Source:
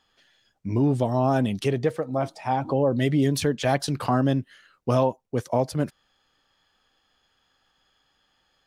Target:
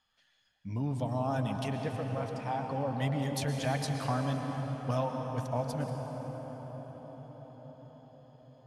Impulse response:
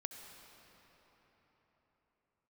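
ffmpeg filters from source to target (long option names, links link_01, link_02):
-filter_complex "[0:a]equalizer=frequency=370:width_type=o:width=0.61:gain=-14[link_01];[1:a]atrim=start_sample=2205,asetrate=25137,aresample=44100[link_02];[link_01][link_02]afir=irnorm=-1:irlink=0,volume=-7.5dB"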